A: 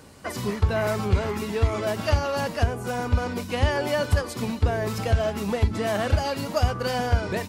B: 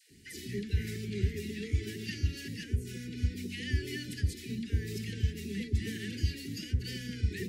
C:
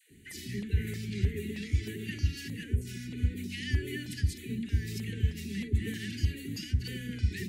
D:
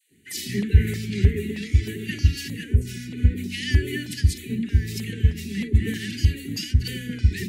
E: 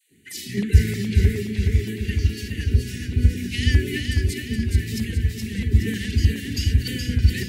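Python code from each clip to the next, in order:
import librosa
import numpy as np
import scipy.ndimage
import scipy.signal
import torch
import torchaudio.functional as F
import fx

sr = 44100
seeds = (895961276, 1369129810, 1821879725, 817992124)

y1 = scipy.signal.sosfilt(scipy.signal.cheby1(4, 1.0, [400.0, 1800.0], 'bandstop', fs=sr, output='sos'), x)
y1 = fx.dispersion(y1, sr, late='lows', ms=109.0, hz=610.0)
y1 = y1 * 10.0 ** (-7.5 / 20.0)
y2 = fx.filter_lfo_notch(y1, sr, shape='square', hz=1.6, low_hz=530.0, high_hz=5200.0, q=0.84)
y2 = y2 * 10.0 ** (2.0 / 20.0)
y3 = fx.rider(y2, sr, range_db=5, speed_s=2.0)
y3 = fx.band_widen(y3, sr, depth_pct=70)
y3 = y3 * 10.0 ** (8.5 / 20.0)
y4 = fx.tremolo_random(y3, sr, seeds[0], hz=3.5, depth_pct=55)
y4 = fx.echo_feedback(y4, sr, ms=421, feedback_pct=50, wet_db=-4.5)
y4 = y4 * 10.0 ** (2.0 / 20.0)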